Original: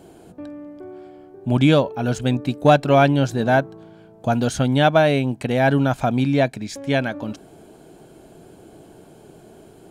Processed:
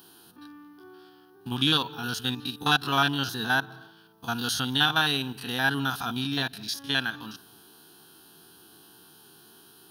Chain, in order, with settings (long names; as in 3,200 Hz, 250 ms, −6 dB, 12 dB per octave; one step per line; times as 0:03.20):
spectrum averaged block by block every 50 ms
spectral tilt +4.5 dB per octave
phaser with its sweep stopped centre 2,200 Hz, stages 6
on a send: convolution reverb, pre-delay 133 ms, DRR 23 dB